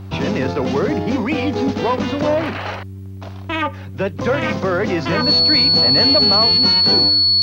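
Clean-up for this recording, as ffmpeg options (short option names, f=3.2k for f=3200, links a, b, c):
-af "bandreject=f=96.3:t=h:w=4,bandreject=f=192.6:t=h:w=4,bandreject=f=288.9:t=h:w=4,bandreject=f=385.2:t=h:w=4,bandreject=f=4.4k:w=30"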